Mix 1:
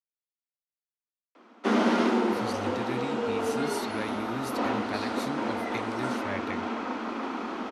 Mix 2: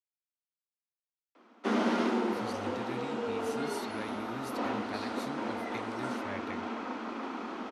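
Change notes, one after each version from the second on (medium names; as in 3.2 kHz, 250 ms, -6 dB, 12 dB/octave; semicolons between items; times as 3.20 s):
speech -6.5 dB; background -5.0 dB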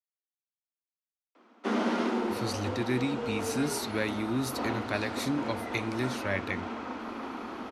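speech +11.5 dB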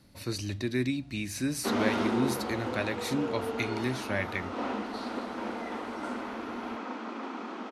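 speech: entry -2.15 s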